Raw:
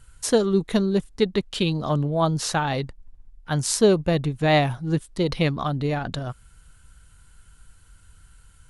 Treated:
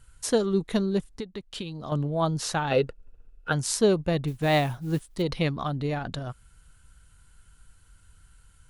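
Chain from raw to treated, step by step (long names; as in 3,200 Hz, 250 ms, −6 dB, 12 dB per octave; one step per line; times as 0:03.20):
0:01.08–0:01.92: downward compressor 12 to 1, threshold −28 dBFS, peak gain reduction 14.5 dB
0:02.70–0:03.51: hollow resonant body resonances 470/1,400/2,600 Hz, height 15 dB → 18 dB, ringing for 20 ms
0:04.27–0:05.22: noise that follows the level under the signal 27 dB
level −4 dB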